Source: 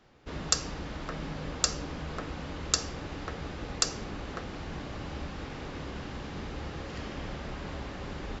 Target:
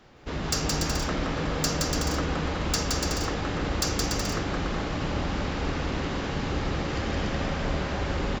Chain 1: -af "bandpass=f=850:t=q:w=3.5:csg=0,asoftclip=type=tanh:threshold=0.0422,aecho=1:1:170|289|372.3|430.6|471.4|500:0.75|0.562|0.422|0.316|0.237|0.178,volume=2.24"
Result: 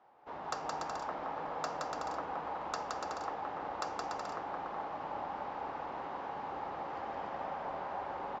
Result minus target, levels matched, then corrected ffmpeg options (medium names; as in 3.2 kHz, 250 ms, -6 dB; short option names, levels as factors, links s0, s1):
1 kHz band +9.0 dB
-af "asoftclip=type=tanh:threshold=0.0422,aecho=1:1:170|289|372.3|430.6|471.4|500:0.75|0.562|0.422|0.316|0.237|0.178,volume=2.24"